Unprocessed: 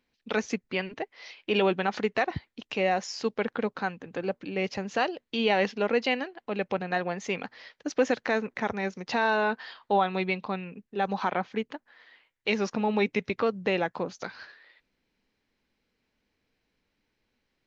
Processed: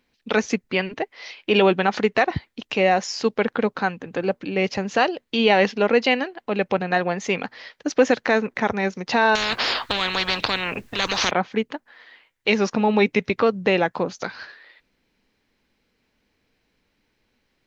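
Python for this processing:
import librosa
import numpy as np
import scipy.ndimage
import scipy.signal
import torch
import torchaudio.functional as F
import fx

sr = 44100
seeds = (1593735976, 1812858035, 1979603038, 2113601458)

y = fx.spectral_comp(x, sr, ratio=10.0, at=(9.35, 11.31))
y = y * 10.0 ** (7.5 / 20.0)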